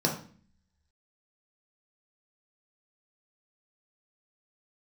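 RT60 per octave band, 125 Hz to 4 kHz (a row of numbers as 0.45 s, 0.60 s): 0.75 s, 0.80 s, 0.45 s, 0.40 s, 0.45 s, 0.40 s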